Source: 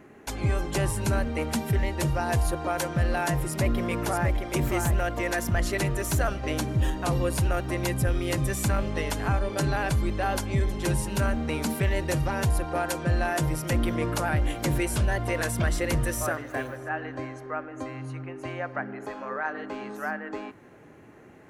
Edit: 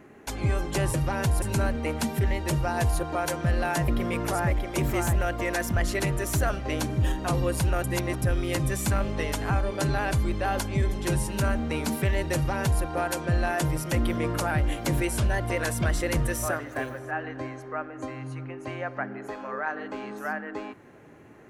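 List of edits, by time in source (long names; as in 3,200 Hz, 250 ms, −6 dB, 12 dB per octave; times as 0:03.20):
0:03.40–0:03.66: remove
0:07.62–0:08.00: reverse
0:12.13–0:12.61: duplicate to 0:00.94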